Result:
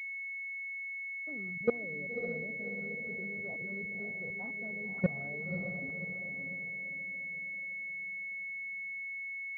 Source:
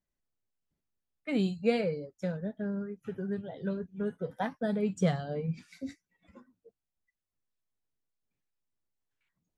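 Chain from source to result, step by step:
output level in coarse steps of 23 dB
on a send: feedback delay with all-pass diffusion 566 ms, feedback 47%, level −5.5 dB
on the sum: switching amplifier with a slow clock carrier 2,200 Hz

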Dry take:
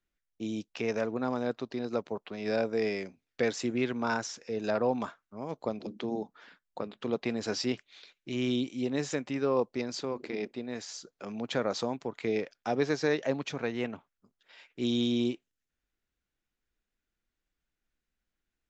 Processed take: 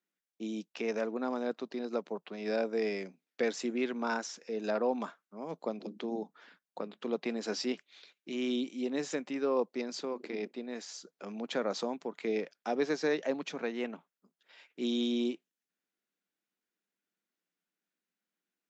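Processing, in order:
elliptic high-pass filter 170 Hz, stop band 40 dB
level −2 dB

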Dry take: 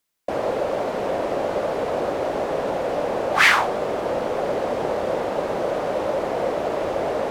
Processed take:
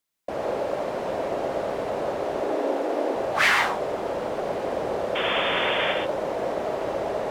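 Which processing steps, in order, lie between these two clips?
0:02.42–0:03.15: low shelf with overshoot 200 Hz −13.5 dB, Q 3
0:05.15–0:05.93: sound drawn into the spectrogram noise 450–3,600 Hz −22 dBFS
reverb whose tail is shaped and stops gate 150 ms rising, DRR 3 dB
level −5.5 dB

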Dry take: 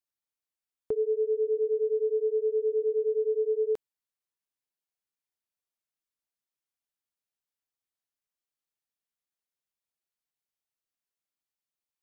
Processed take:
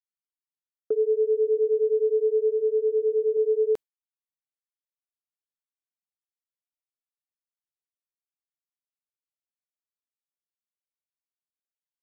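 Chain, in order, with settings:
downward expander −32 dBFS
0:02.49–0:03.37: hum removal 433.2 Hz, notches 2
level +4.5 dB

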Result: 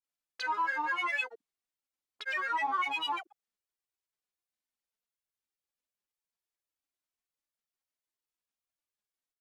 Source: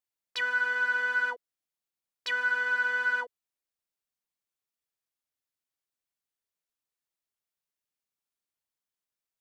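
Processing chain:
comb filter 2.5 ms, depth 85%
granular cloud 100 ms, grains 20 per second, pitch spread up and down by 12 semitones
level −4.5 dB

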